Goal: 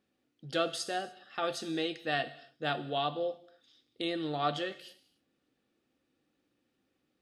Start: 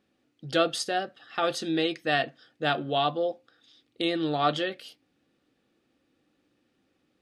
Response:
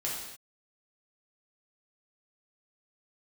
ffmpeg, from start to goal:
-filter_complex "[0:a]asplit=2[s0][s1];[1:a]atrim=start_sample=2205,highshelf=f=4400:g=10.5[s2];[s1][s2]afir=irnorm=-1:irlink=0,volume=0.133[s3];[s0][s3]amix=inputs=2:normalize=0,volume=0.422"

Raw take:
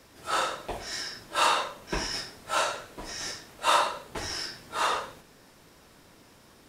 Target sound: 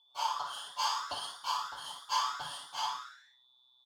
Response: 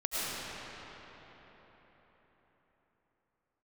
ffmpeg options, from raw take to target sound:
-filter_complex "[0:a]agate=range=0.0562:threshold=0.00562:ratio=16:detection=peak,equalizer=f=1400:t=o:w=0.26:g=-14.5,asplit=2[s0][s1];[s1]adelay=12,volume=0.631[s2];[s0][s2]amix=inputs=2:normalize=0,aeval=exprs='val(0)+0.001*sin(2*PI*2000*n/s)':c=same,asplit=3[s3][s4][s5];[s3]bandpass=f=530:t=q:w=8,volume=1[s6];[s4]bandpass=f=1840:t=q:w=8,volume=0.501[s7];[s5]bandpass=f=2480:t=q:w=8,volume=0.355[s8];[s6][s7][s8]amix=inputs=3:normalize=0,asplit=9[s9][s10][s11][s12][s13][s14][s15][s16][s17];[s10]adelay=99,afreqshift=73,volume=0.531[s18];[s11]adelay=198,afreqshift=146,volume=0.302[s19];[s12]adelay=297,afreqshift=219,volume=0.172[s20];[s13]adelay=396,afreqshift=292,volume=0.0989[s21];[s14]adelay=495,afreqshift=365,volume=0.0562[s22];[s15]adelay=594,afreqshift=438,volume=0.032[s23];[s16]adelay=693,afreqshift=511,volume=0.0182[s24];[s17]adelay=792,afreqshift=584,volume=0.0104[s25];[s9][s18][s19][s20][s21][s22][s23][s24][s25]amix=inputs=9:normalize=0,asubboost=boost=7.5:cutoff=95,asetrate=76440,aresample=44100,volume=2"

